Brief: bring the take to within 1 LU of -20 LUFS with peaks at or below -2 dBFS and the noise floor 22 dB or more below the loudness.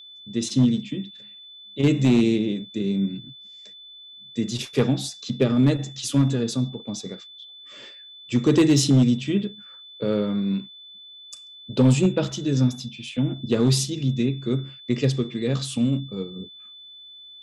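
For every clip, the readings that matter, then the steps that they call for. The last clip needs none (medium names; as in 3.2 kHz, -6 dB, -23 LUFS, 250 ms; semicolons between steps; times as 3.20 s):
clipped samples 0.5%; clipping level -11.0 dBFS; steady tone 3.5 kHz; tone level -42 dBFS; loudness -23.0 LUFS; peak level -11.0 dBFS; loudness target -20.0 LUFS
-> clip repair -11 dBFS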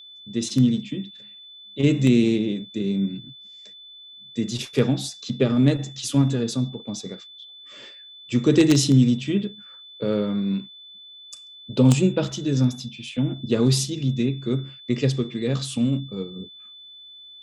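clipped samples 0.0%; steady tone 3.5 kHz; tone level -42 dBFS
-> band-stop 3.5 kHz, Q 30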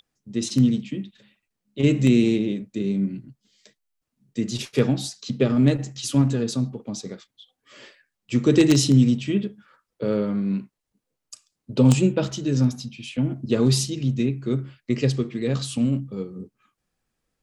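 steady tone not found; loudness -22.5 LUFS; peak level -2.0 dBFS; loudness target -20.0 LUFS
-> trim +2.5 dB; peak limiter -2 dBFS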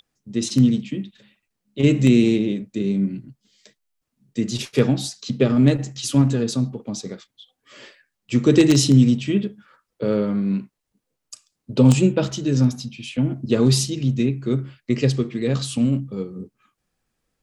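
loudness -20.0 LUFS; peak level -2.0 dBFS; noise floor -79 dBFS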